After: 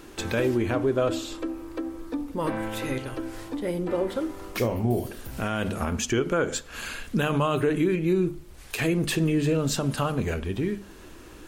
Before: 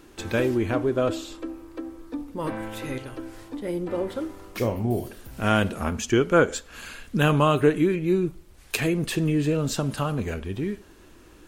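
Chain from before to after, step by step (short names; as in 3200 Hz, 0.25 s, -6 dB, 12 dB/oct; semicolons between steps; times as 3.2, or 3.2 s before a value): notches 50/100/150/200/250/300/350 Hz; in parallel at -1 dB: compressor, threshold -37 dBFS, peak gain reduction 22 dB; on the sum: limiter -15 dBFS, peak gain reduction 10 dB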